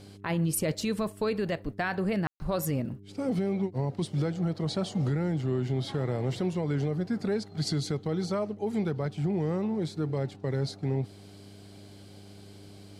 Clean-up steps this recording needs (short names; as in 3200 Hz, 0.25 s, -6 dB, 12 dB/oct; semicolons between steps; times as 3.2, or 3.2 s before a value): de-hum 99.8 Hz, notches 4; room tone fill 2.27–2.4